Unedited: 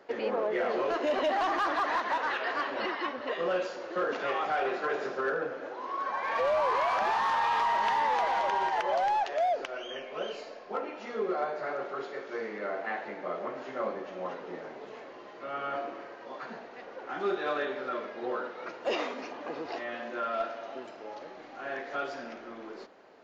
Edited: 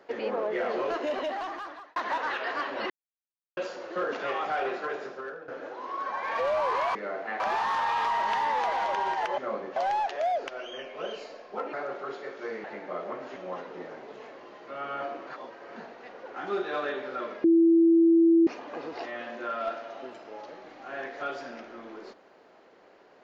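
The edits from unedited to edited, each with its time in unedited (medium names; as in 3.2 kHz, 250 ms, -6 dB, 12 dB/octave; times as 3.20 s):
0.89–1.96 s: fade out linear
2.90–3.57 s: mute
4.67–5.48 s: fade out, to -15 dB
10.90–11.63 s: delete
12.54–12.99 s: move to 6.95 s
13.71–14.09 s: move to 8.93 s
16.00–16.49 s: reverse
18.17–19.20 s: bleep 332 Hz -16 dBFS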